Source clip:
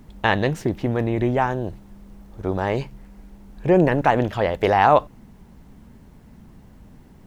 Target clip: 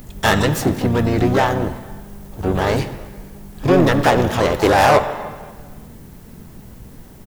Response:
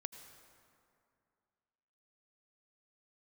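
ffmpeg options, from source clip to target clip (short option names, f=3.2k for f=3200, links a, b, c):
-filter_complex "[0:a]asplit=2[a][b];[1:a]atrim=start_sample=2205,asetrate=74970,aresample=44100[c];[b][c]afir=irnorm=-1:irlink=0,volume=7.5dB[d];[a][d]amix=inputs=2:normalize=0,acontrast=85,asplit=3[e][f][g];[f]asetrate=33038,aresample=44100,atempo=1.33484,volume=-4dB[h];[g]asetrate=88200,aresample=44100,atempo=0.5,volume=-10dB[i];[e][h][i]amix=inputs=3:normalize=0,aemphasis=mode=production:type=50kf,volume=-7.5dB"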